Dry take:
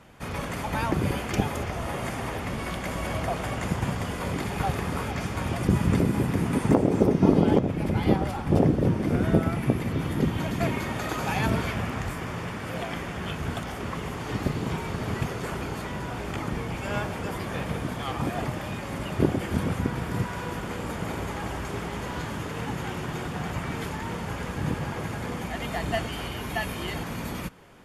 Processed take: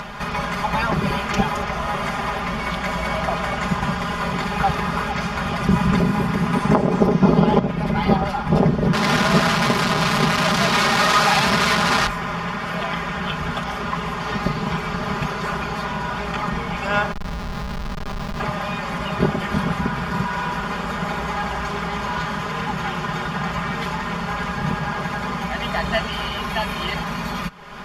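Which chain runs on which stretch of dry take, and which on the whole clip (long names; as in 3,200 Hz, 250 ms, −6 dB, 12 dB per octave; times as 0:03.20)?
0:08.93–0:12.07: linear delta modulator 64 kbit/s, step −18 dBFS + high-pass filter 120 Hz 6 dB per octave
0:17.12–0:18.40: drawn EQ curve 210 Hz 0 dB, 340 Hz −11 dB, 510 Hz −7 dB, 5,000 Hz −2 dB + comparator with hysteresis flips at −29.5 dBFS
whole clip: comb filter 4.9 ms, depth 83%; upward compression, threshold −27 dBFS; drawn EQ curve 170 Hz 0 dB, 320 Hz −6 dB, 690 Hz +1 dB, 1,100 Hz +7 dB, 2,100 Hz +2 dB, 5,000 Hz +3 dB, 8,300 Hz −8 dB; level +3.5 dB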